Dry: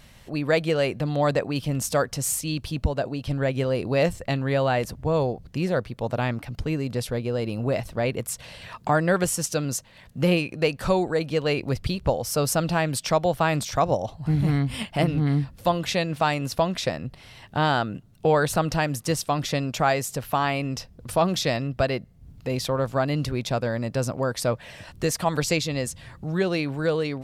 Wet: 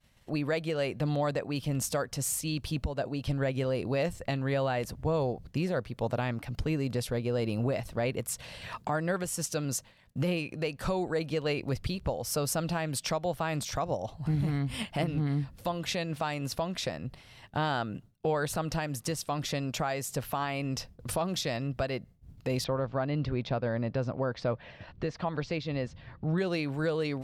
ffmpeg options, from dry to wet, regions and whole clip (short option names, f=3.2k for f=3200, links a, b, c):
-filter_complex "[0:a]asettb=1/sr,asplit=3[a][b][c];[a]atrim=end=22.644[d];[b]atrim=start=22.64:end=26.38,asetpts=PTS-STARTPTS,afade=t=in:d=0.004:c=qsin,afade=t=out:st=3.736:d=0.004:c=qsin,lowpass=f=4.8k:w=0.5412,lowpass=f=4.8k:w=1.3066,highshelf=f=3.1k:g=-9[e];[c]atrim=start=26.376[f];[d][e]acrossfade=d=0.004:c1=hsin:c2=qsin[g];[g][f]acrossfade=d=0.004:c1=qsin:c2=hsin,agate=range=-33dB:threshold=-40dB:ratio=3:detection=peak,alimiter=limit=-21dB:level=0:latency=1:release=470"